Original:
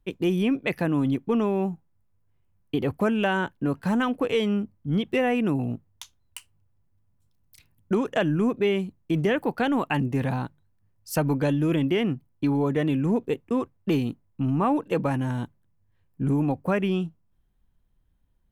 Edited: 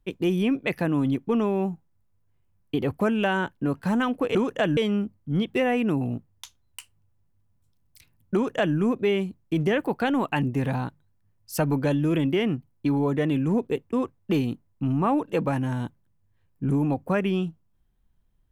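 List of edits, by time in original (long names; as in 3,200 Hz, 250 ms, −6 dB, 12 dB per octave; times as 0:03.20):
0:07.92–0:08.34: duplicate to 0:04.35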